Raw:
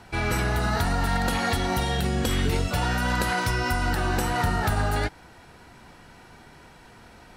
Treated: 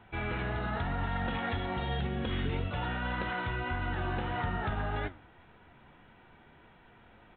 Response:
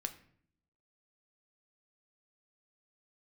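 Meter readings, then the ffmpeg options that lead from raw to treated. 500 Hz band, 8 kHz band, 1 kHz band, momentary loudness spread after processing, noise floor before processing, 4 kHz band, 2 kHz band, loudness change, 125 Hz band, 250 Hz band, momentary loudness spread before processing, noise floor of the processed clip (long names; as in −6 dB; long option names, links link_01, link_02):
−8.5 dB, below −40 dB, −8.5 dB, 1 LU, −50 dBFS, −11.0 dB, −8.5 dB, −9.0 dB, −8.0 dB, −8.5 dB, 1 LU, −59 dBFS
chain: -filter_complex "[0:a]asplit=2[link_01][link_02];[1:a]atrim=start_sample=2205[link_03];[link_02][link_03]afir=irnorm=-1:irlink=0,volume=-8.5dB[link_04];[link_01][link_04]amix=inputs=2:normalize=0,flanger=delay=8.9:depth=6.3:regen=76:speed=1.8:shape=sinusoidal,aresample=8000,aresample=44100,volume=-6.5dB"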